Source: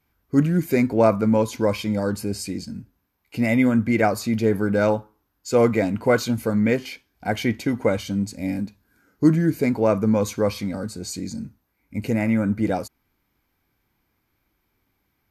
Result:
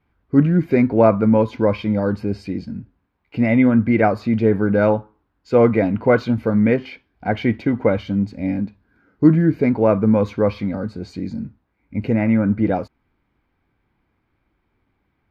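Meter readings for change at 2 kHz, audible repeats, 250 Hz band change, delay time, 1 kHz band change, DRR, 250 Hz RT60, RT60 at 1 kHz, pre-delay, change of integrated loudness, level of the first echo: +1.0 dB, no echo audible, +4.0 dB, no echo audible, +3.0 dB, no reverb audible, no reverb audible, no reverb audible, no reverb audible, +3.5 dB, no echo audible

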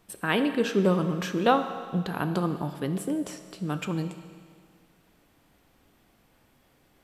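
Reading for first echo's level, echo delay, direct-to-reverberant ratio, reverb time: no echo audible, no echo audible, 8.0 dB, 2.0 s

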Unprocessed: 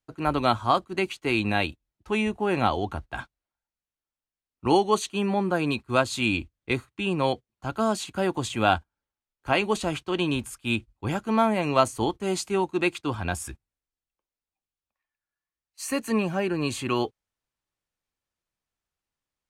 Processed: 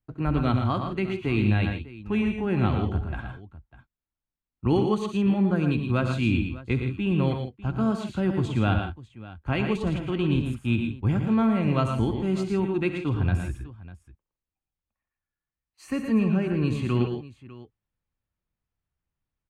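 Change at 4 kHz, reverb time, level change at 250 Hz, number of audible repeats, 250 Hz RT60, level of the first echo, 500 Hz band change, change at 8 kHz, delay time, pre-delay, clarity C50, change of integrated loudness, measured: −7.0 dB, no reverb audible, +3.5 dB, 4, no reverb audible, −13.5 dB, −3.0 dB, below −10 dB, 67 ms, no reverb audible, no reverb audible, +0.5 dB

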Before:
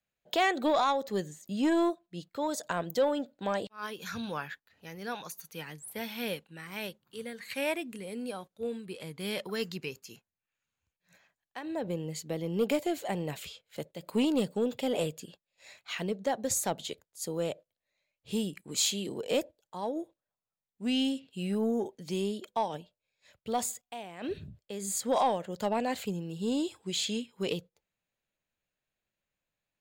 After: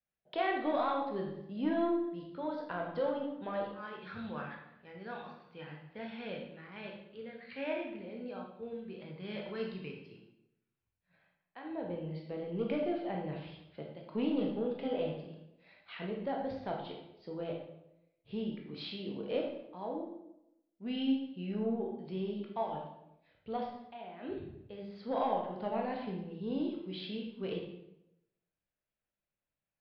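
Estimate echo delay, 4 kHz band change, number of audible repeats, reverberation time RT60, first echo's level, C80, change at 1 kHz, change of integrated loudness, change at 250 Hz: no echo audible, −11.0 dB, no echo audible, 0.85 s, no echo audible, 6.5 dB, −5.0 dB, −5.0 dB, −4.0 dB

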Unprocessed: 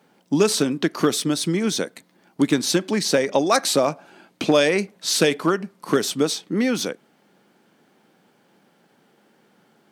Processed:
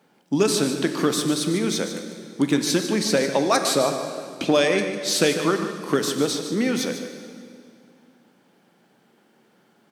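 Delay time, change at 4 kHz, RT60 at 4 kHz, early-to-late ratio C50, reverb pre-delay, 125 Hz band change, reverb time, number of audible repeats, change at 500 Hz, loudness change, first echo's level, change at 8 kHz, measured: 149 ms, −1.0 dB, 2.0 s, 6.0 dB, 16 ms, −1.0 dB, 2.3 s, 1, −1.0 dB, −1.0 dB, −10.5 dB, −1.0 dB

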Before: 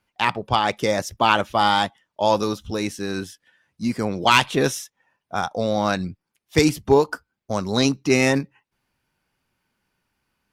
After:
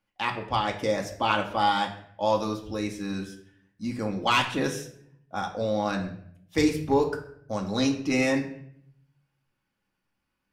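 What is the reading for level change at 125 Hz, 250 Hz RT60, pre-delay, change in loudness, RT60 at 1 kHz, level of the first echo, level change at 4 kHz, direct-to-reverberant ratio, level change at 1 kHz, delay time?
−6.5 dB, 0.90 s, 4 ms, −6.0 dB, 0.60 s, no echo audible, −7.0 dB, 1.0 dB, −6.0 dB, no echo audible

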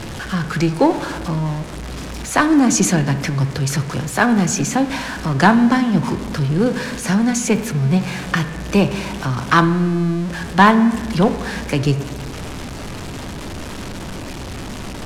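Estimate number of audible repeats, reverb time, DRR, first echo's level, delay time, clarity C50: no echo audible, 1.6 s, 10.0 dB, no echo audible, no echo audible, 12.0 dB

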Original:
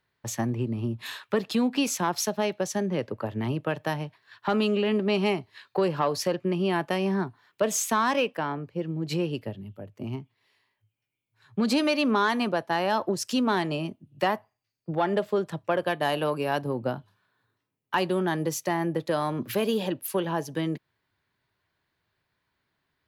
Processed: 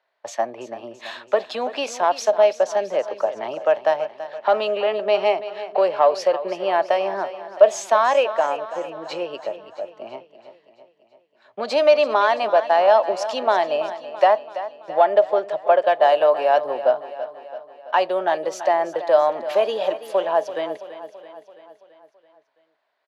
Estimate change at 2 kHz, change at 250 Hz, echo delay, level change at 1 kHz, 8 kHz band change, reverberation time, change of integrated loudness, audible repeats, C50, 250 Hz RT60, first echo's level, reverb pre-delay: +3.5 dB, −10.0 dB, 333 ms, +9.0 dB, can't be measured, no reverb audible, +7.5 dB, 5, no reverb audible, no reverb audible, −13.5 dB, no reverb audible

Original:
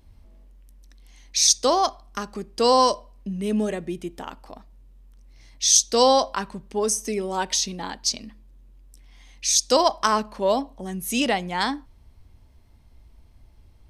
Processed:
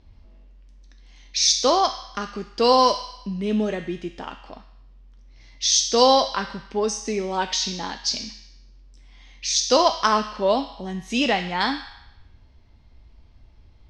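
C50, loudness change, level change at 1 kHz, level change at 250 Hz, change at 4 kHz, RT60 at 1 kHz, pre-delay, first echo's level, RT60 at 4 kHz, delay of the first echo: 8.5 dB, 0.0 dB, +1.5 dB, +1.0 dB, +2.0 dB, 0.90 s, 4 ms, no echo audible, 0.85 s, no echo audible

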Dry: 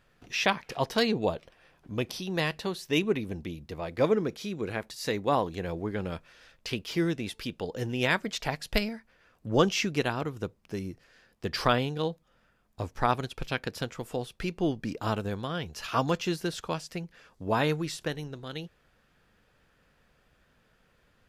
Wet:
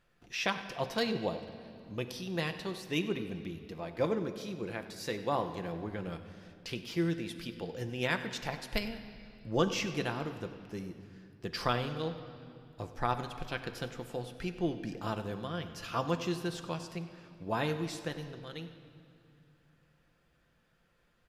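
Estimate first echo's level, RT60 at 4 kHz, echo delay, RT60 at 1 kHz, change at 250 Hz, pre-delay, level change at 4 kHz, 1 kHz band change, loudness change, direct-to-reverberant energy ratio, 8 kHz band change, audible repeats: −17.5 dB, 2.2 s, 96 ms, 2.3 s, −5.0 dB, 6 ms, −5.5 dB, −5.5 dB, −5.5 dB, 6.5 dB, −6.0 dB, 1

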